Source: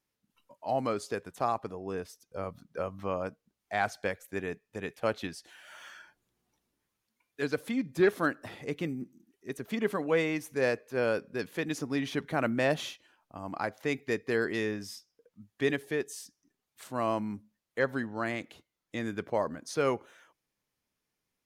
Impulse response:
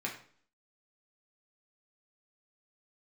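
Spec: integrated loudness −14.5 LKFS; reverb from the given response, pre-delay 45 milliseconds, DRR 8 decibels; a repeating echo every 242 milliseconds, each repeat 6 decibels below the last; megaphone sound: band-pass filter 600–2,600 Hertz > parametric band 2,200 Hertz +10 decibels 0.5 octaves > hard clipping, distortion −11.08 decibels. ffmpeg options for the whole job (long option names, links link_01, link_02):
-filter_complex "[0:a]aecho=1:1:242|484|726|968|1210|1452:0.501|0.251|0.125|0.0626|0.0313|0.0157,asplit=2[link_01][link_02];[1:a]atrim=start_sample=2205,adelay=45[link_03];[link_02][link_03]afir=irnorm=-1:irlink=0,volume=-11.5dB[link_04];[link_01][link_04]amix=inputs=2:normalize=0,highpass=600,lowpass=2600,equalizer=frequency=2200:width_type=o:width=0.5:gain=10,asoftclip=type=hard:threshold=-26.5dB,volume=20dB"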